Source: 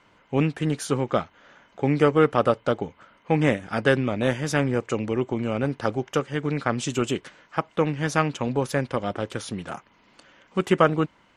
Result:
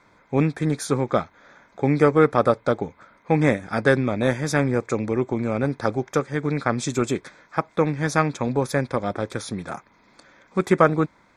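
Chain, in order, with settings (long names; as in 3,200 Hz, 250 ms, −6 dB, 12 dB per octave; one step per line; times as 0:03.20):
Butterworth band-reject 2,900 Hz, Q 3.8
level +2 dB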